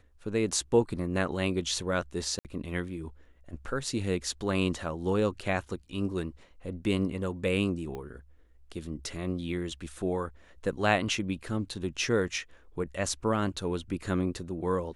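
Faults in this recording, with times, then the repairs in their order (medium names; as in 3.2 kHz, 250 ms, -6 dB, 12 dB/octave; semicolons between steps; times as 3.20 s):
2.39–2.45 s: dropout 58 ms
7.95 s: pop -26 dBFS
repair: de-click; interpolate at 2.39 s, 58 ms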